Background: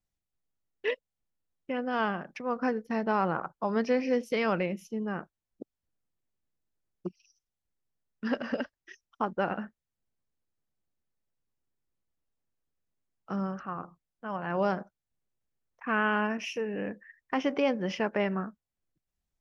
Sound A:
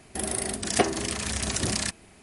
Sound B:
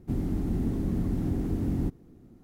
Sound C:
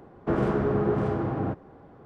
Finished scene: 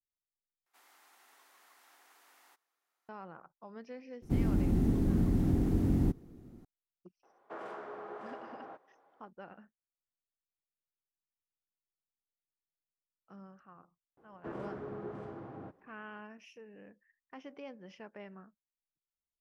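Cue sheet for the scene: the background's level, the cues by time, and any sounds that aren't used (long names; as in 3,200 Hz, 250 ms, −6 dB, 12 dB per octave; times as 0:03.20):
background −20 dB
0:00.66: overwrite with B −8 dB + high-pass filter 1,000 Hz 24 dB per octave
0:04.22: mix in B
0:07.23: mix in C −11.5 dB + Chebyshev high-pass filter 730 Hz
0:14.17: mix in C −16 dB + low-shelf EQ 120 Hz −11 dB
not used: A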